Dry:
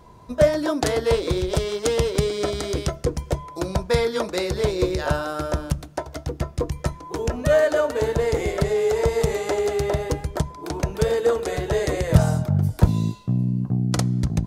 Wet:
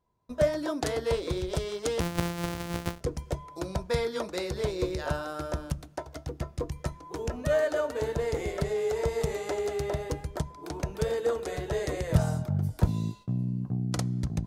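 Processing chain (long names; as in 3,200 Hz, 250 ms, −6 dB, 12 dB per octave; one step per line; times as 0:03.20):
0:02.00–0:03.01: samples sorted by size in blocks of 256 samples
noise gate with hold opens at −36 dBFS
level −8 dB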